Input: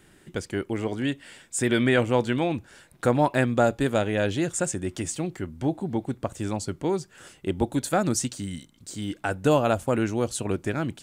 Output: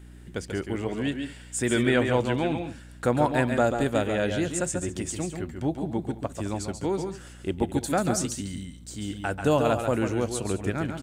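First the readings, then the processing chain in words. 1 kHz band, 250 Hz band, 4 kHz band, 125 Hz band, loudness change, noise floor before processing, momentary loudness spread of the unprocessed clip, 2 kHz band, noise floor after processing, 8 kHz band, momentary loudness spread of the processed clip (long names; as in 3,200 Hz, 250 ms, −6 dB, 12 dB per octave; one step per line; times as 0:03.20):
−1.0 dB, −1.0 dB, −1.0 dB, −1.0 dB, −1.0 dB, −58 dBFS, 12 LU, −1.0 dB, −46 dBFS, −1.0 dB, 11 LU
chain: on a send: multi-tap delay 138/149/210 ms −7/−13/−17.5 dB
on the sum: mains hum 60 Hz, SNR 19 dB
level −2 dB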